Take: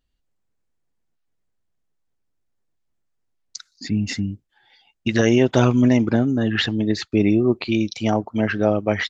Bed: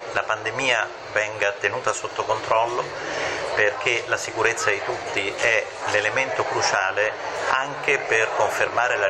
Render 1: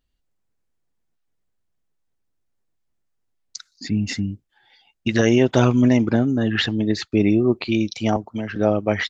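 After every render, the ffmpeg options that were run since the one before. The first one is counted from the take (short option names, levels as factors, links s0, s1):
-filter_complex "[0:a]asettb=1/sr,asplit=3[s0][s1][s2];[s0]atrim=end=8.164[s3];[s1]atrim=start=8.16:end=8.56,asetpts=PTS-STARTPTS,afade=t=in:d=0.004:c=qsin,afade=t=out:st=0.396:d=0.004:c=qsin,acrossover=split=240|3100[s4][s5][s6];[s4]acompressor=threshold=0.0355:ratio=4[s7];[s5]acompressor=threshold=0.0282:ratio=4[s8];[s6]acompressor=threshold=0.00562:ratio=4[s9];[s7][s8][s9]amix=inputs=3:normalize=0[s10];[s2]atrim=start=8.556[s11];[s3][s10]acrossfade=d=0.004:c1=hsin:c2=qsin[s12];[s12][s11]acrossfade=d=0.004:c1=qsin:c2=hsin"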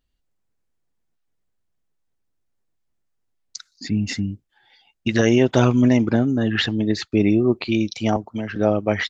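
-af anull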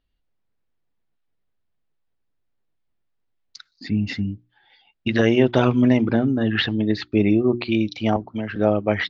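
-af "lowpass=f=4300:w=0.5412,lowpass=f=4300:w=1.3066,bandreject=f=60:t=h:w=6,bandreject=f=120:t=h:w=6,bandreject=f=180:t=h:w=6,bandreject=f=240:t=h:w=6,bandreject=f=300:t=h:w=6,bandreject=f=360:t=h:w=6"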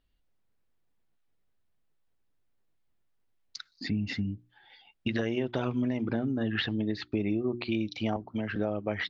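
-af "alimiter=limit=0.355:level=0:latency=1:release=251,acompressor=threshold=0.0282:ratio=2.5"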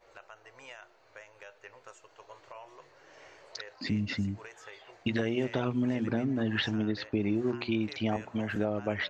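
-filter_complex "[1:a]volume=0.0398[s0];[0:a][s0]amix=inputs=2:normalize=0"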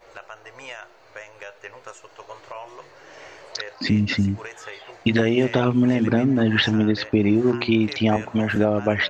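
-af "volume=3.55"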